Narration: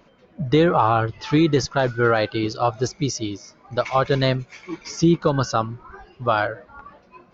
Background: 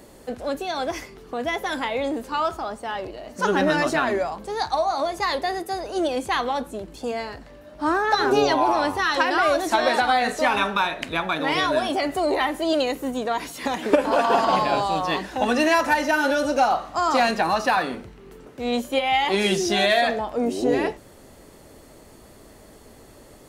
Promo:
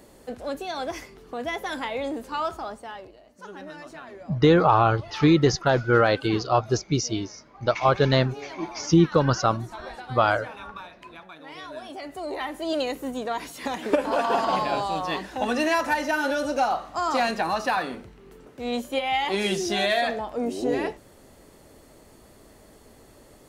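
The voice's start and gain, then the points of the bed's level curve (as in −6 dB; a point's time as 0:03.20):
3.90 s, −0.5 dB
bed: 0:02.69 −4 dB
0:03.43 −20 dB
0:11.42 −20 dB
0:12.82 −4 dB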